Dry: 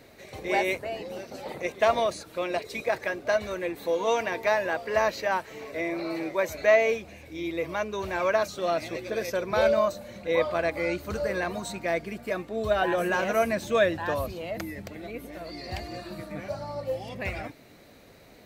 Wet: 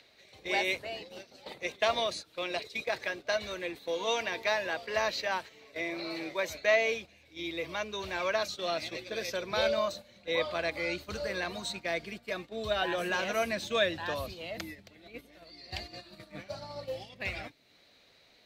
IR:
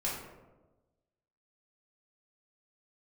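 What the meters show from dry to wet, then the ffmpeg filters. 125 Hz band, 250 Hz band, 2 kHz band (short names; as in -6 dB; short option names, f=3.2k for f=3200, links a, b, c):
-8.0 dB, -7.5 dB, -2.5 dB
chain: -filter_complex "[0:a]acrossover=split=150|460|6400[a][b][c][d];[c]acompressor=mode=upward:threshold=-44dB:ratio=2.5[e];[a][b][e][d]amix=inputs=4:normalize=0,agate=range=-10dB:threshold=-36dB:ratio=16:detection=peak,equalizer=f=3.8k:w=0.87:g=12.5,volume=-7.5dB"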